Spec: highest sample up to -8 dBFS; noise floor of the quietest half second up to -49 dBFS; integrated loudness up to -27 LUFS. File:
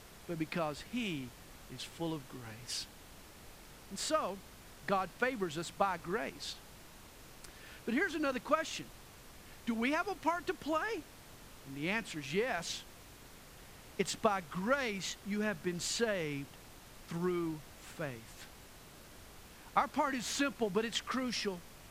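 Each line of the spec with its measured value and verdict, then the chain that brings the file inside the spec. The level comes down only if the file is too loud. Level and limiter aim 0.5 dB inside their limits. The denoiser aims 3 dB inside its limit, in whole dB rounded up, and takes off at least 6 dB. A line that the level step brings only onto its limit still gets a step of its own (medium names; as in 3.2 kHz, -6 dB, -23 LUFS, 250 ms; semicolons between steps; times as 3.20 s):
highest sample -15.5 dBFS: pass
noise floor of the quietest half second -55 dBFS: pass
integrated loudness -36.5 LUFS: pass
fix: none needed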